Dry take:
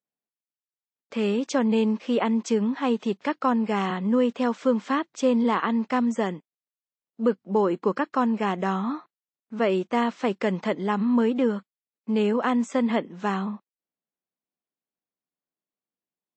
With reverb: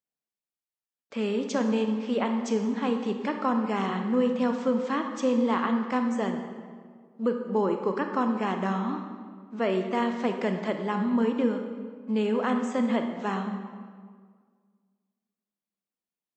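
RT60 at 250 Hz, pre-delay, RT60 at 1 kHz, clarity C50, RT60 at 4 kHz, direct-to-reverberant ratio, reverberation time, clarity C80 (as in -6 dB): 2.0 s, 25 ms, 1.7 s, 6.0 dB, 1.2 s, 5.0 dB, 1.8 s, 7.5 dB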